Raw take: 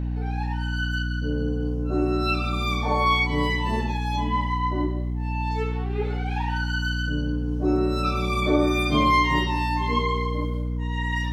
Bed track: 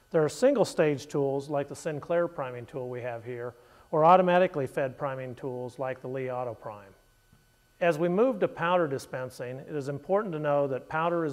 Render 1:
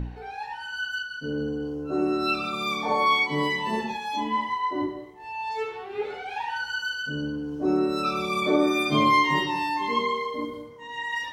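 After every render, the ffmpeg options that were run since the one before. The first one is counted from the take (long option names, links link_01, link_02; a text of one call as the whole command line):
ffmpeg -i in.wav -af "bandreject=frequency=60:width_type=h:width=4,bandreject=frequency=120:width_type=h:width=4,bandreject=frequency=180:width_type=h:width=4,bandreject=frequency=240:width_type=h:width=4,bandreject=frequency=300:width_type=h:width=4" out.wav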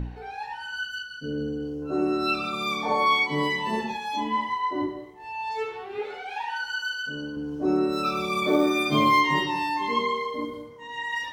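ffmpeg -i in.wav -filter_complex "[0:a]asettb=1/sr,asplit=3[link_01][link_02][link_03];[link_01]atrim=end=0.834[link_04];[link_02]atrim=start=0.83:end=1.82,asetpts=PTS-STARTPTS,afade=type=in:duration=0.004:curve=qsin,afade=type=out:start_time=0.986:duration=0.004:curve=qsin,equalizer=frequency=1000:width=1.5:gain=-10.5[link_05];[link_03]atrim=start=1.816[link_06];[link_04][link_05]acrossfade=duration=0.004:curve1=hsin:curve2=qsin[link_07];[link_07][link_06]acrossfade=duration=0.004:curve1=qsin:curve2=hsin,asettb=1/sr,asplit=3[link_08][link_09][link_10];[link_08]atrim=end=5.994[link_11];[link_09]atrim=start=5.99:end=7.37,asetpts=PTS-STARTPTS,afade=type=in:duration=0.004:curve=qsin,afade=type=out:start_time=1.376:duration=0.004:curve=qsin,equalizer=frequency=96:width=0.42:gain=-9.5[link_12];[link_10]atrim=start=7.366[link_13];[link_11][link_12]acrossfade=duration=0.004:curve1=hsin:curve2=qsin[link_14];[link_14][link_13]acrossfade=duration=0.004:curve1=qsin:curve2=hsin,asettb=1/sr,asplit=3[link_15][link_16][link_17];[link_15]atrim=end=7.924[link_18];[link_16]atrim=start=7.92:end=9.21,asetpts=PTS-STARTPTS,afade=type=in:duration=0.004:curve=qsin,afade=type=out:start_time=1.286:duration=0.004:curve=qsin,acrusher=bits=8:mode=log:mix=0:aa=0.000001[link_19];[link_17]atrim=start=9.206[link_20];[link_18][link_19]acrossfade=duration=0.004:curve1=hsin:curve2=qsin[link_21];[link_21][link_20]acrossfade=duration=0.004:curve1=qsin:curve2=hsin" out.wav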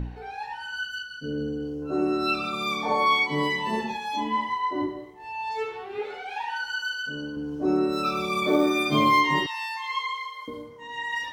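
ffmpeg -i in.wav -filter_complex "[0:a]asettb=1/sr,asplit=3[link_01][link_02][link_03];[link_01]atrim=end=9.464[link_04];[link_02]atrim=start=9.46:end=10.48,asetpts=PTS-STARTPTS,afade=type=in:duration=0.004:curve=qsin,afade=type=out:start_time=1.016:duration=0.004:curve=qsin,highpass=frequency=1100:width=0.5412,highpass=frequency=1100:width=1.3066[link_05];[link_03]atrim=start=10.476[link_06];[link_04][link_05]acrossfade=duration=0.004:curve1=hsin:curve2=qsin[link_07];[link_07][link_06]acrossfade=duration=0.004:curve1=qsin:curve2=hsin" out.wav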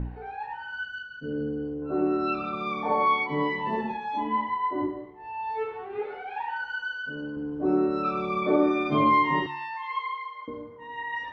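ffmpeg -i in.wav -af "lowpass=1800,bandreject=frequency=72.04:width_type=h:width=4,bandreject=frequency=144.08:width_type=h:width=4,bandreject=frequency=216.12:width_type=h:width=4,bandreject=frequency=288.16:width_type=h:width=4,bandreject=frequency=360.2:width_type=h:width=4" out.wav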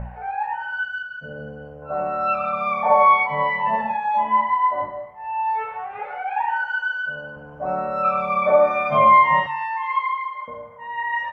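ffmpeg -i in.wav -af "firequalizer=gain_entry='entry(210,0);entry(330,-25);entry(560,13);entry(960,9);entry(2400,7);entry(3900,-6);entry(7700,6)':delay=0.05:min_phase=1" out.wav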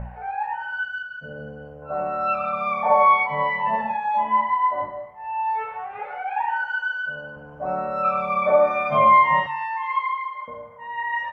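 ffmpeg -i in.wav -af "volume=-1.5dB" out.wav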